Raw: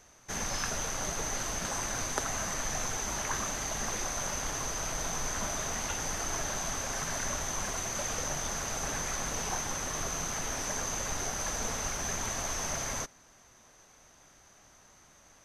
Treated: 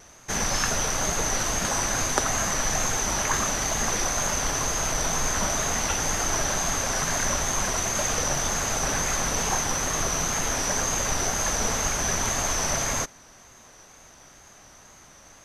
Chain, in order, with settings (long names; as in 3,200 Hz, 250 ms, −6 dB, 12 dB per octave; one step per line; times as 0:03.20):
tape wow and flutter 47 cents
level +8.5 dB